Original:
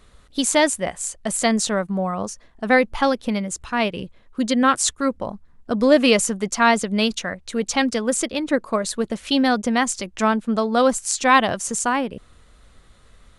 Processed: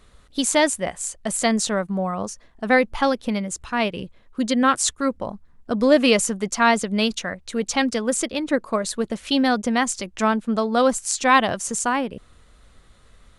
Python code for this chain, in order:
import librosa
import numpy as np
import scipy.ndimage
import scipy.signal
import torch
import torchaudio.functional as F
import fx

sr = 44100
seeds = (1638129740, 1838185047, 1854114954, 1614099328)

y = x * librosa.db_to_amplitude(-1.0)